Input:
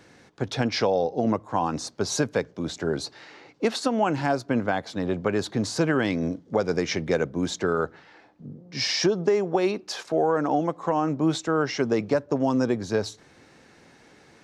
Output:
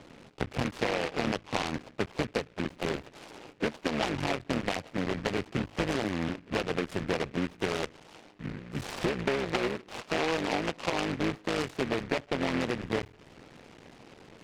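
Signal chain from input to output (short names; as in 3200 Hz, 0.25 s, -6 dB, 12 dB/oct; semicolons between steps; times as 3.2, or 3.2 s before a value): cycle switcher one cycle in 3, muted; LPF 1400 Hz 24 dB/oct; compressor 2.5:1, threshold -36 dBFS, peak gain reduction 12 dB; noise-modulated delay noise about 1600 Hz, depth 0.17 ms; gain +5 dB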